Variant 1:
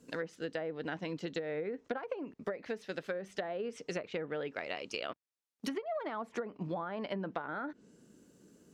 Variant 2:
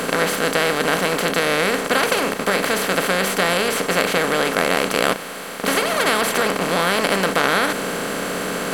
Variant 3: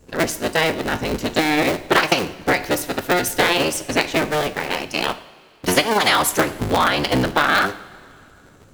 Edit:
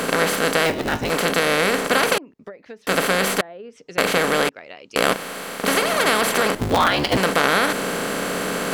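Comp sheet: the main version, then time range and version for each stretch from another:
2
0.66–1.1 from 3
2.18–2.87 from 1
3.41–3.98 from 1
4.49–4.96 from 1
6.55–7.17 from 3

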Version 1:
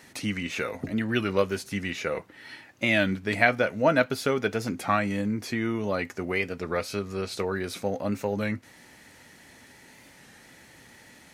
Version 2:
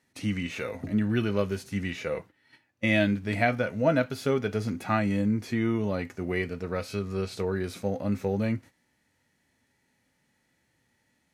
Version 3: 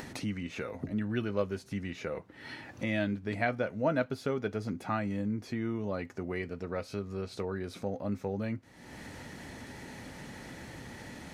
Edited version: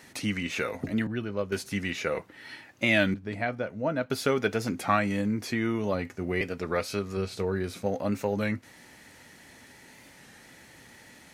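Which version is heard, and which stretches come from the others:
1
1.07–1.52 from 3
3.14–4.1 from 3
5.94–6.41 from 2
7.17–7.86 from 2

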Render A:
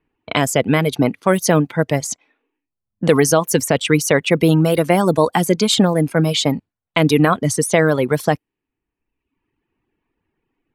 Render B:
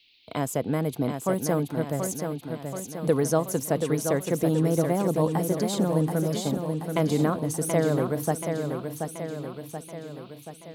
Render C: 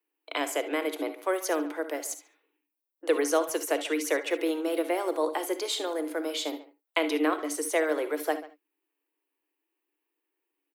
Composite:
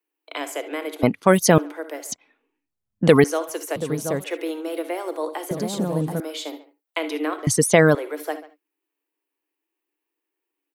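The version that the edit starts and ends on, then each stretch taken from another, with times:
C
1.03–1.58 from A
2.12–3.24 from A
3.76–4.24 from B
5.51–6.2 from B
7.47–7.95 from A

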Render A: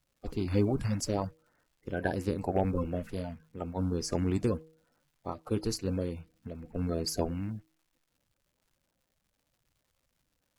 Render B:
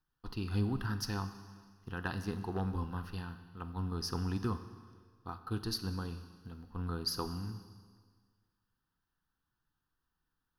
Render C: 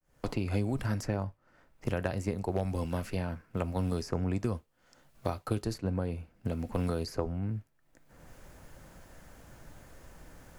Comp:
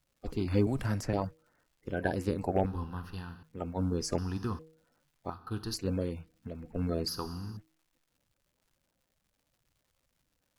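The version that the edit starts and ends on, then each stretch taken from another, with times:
A
0.67–1.13 from C
2.66–3.43 from B
4.18–4.59 from B
5.3–5.74 from B
7.08–7.57 from B

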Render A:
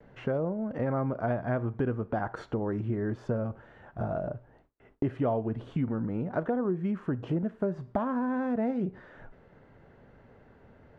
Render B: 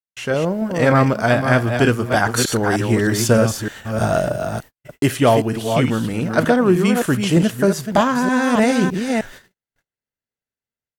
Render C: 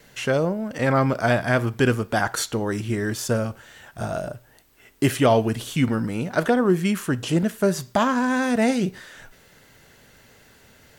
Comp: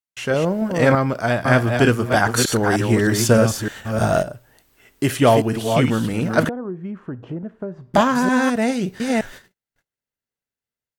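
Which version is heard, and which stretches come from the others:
B
0.95–1.45 from C
4.23–5.09 from C
6.49–7.94 from A
8.5–9 from C

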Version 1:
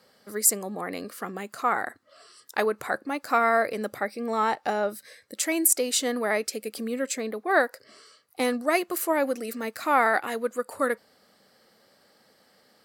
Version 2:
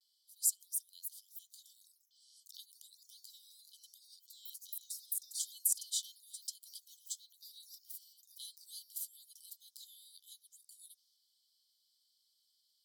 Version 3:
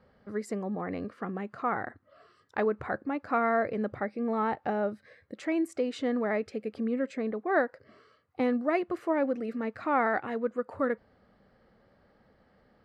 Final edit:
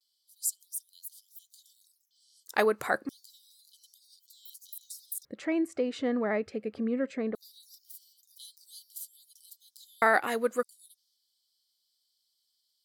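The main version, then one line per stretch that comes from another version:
2
2.48–3.09 from 1
5.25–7.35 from 3
10.02–10.63 from 1

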